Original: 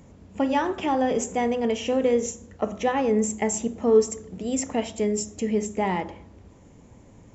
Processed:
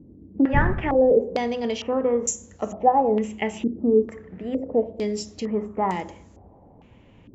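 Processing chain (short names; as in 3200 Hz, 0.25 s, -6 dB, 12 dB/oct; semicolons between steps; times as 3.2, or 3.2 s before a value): 0.53–1.11 wind noise 110 Hz -23 dBFS; stepped low-pass 2.2 Hz 320–7000 Hz; gain -2 dB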